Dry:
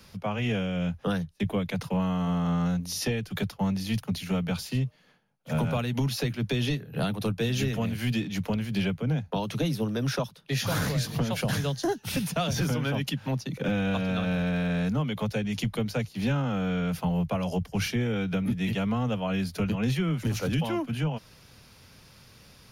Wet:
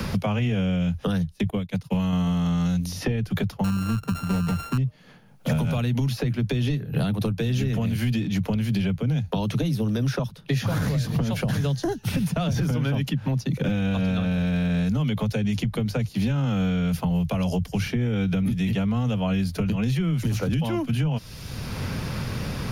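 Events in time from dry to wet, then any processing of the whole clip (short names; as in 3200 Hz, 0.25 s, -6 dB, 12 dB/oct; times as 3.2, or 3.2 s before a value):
1.5–2.13 upward expander 2.5:1, over -41 dBFS
3.64–4.78 sample sorter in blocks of 32 samples
whole clip: low shelf 230 Hz +10.5 dB; limiter -17.5 dBFS; three-band squash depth 100%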